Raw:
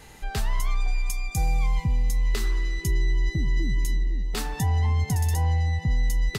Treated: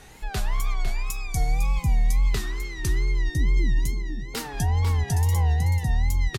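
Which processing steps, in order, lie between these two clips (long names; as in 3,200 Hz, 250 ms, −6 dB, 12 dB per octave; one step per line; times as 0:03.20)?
single-tap delay 498 ms −8 dB
tape wow and flutter 130 cents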